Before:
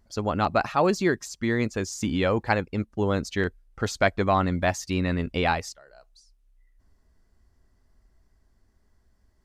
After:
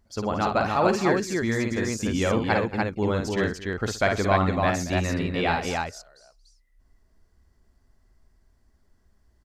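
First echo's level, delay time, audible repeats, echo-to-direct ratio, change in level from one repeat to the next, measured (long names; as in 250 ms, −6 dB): −4.5 dB, 53 ms, 4, −0.5 dB, repeats not evenly spaced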